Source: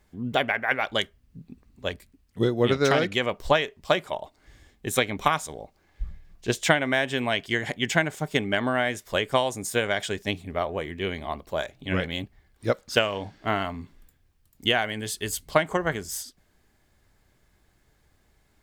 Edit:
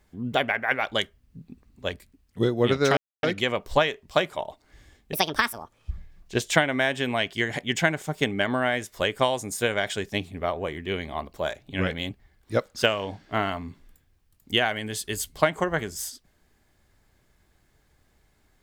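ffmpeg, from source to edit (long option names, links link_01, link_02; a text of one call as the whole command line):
ffmpeg -i in.wav -filter_complex "[0:a]asplit=4[link_01][link_02][link_03][link_04];[link_01]atrim=end=2.97,asetpts=PTS-STARTPTS,afade=type=out:start_time=2.966:duration=0.004:curve=hsin,apad=pad_dur=0.26[link_05];[link_02]atrim=start=2.97:end=4.874,asetpts=PTS-STARTPTS,afade=type=in:duration=0.004:curve=hsin[link_06];[link_03]atrim=start=4.87:end=6.04,asetpts=PTS-STARTPTS,asetrate=66150,aresample=44100[link_07];[link_04]atrim=start=6.036[link_08];[link_05][link_06]concat=n=2:v=0:a=1[link_09];[link_09][link_07]acrossfade=duration=0.004:curve1=hsin:curve2=hsin[link_10];[link_10][link_08]acrossfade=duration=0.004:curve1=hsin:curve2=hsin" out.wav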